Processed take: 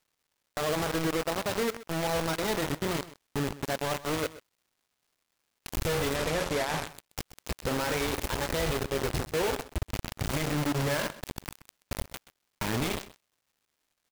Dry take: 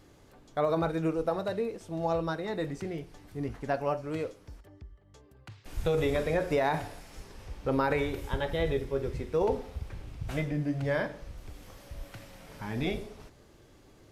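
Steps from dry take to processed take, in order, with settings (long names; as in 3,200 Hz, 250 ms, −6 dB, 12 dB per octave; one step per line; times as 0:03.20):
in parallel at +3 dB: downward compressor 8 to 1, threshold −40 dBFS, peak gain reduction 17 dB
on the sum: brickwall limiter −23 dBFS, peak gain reduction 8.5 dB
bit reduction 5 bits
surface crackle 440 per second −62 dBFS
on a send: single-tap delay 128 ms −17 dB
0:06.16–0:06.87: on the sum: linearly interpolated sample-rate reduction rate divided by 2×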